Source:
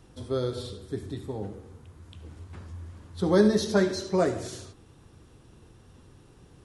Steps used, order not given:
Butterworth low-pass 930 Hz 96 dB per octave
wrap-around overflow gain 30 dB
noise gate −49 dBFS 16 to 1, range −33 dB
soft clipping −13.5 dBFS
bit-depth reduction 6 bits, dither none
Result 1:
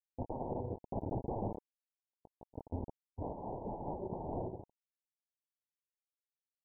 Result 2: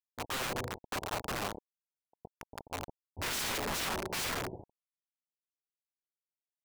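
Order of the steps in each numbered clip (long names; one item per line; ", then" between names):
wrap-around overflow, then bit-depth reduction, then noise gate, then Butterworth low-pass, then soft clipping
noise gate, then bit-depth reduction, then Butterworth low-pass, then wrap-around overflow, then soft clipping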